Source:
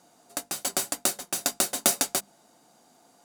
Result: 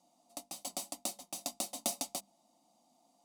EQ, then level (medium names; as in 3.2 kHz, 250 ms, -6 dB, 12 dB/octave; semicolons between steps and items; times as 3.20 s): treble shelf 9.8 kHz -7.5 dB; static phaser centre 420 Hz, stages 6; band-stop 7.1 kHz, Q 22; -9.0 dB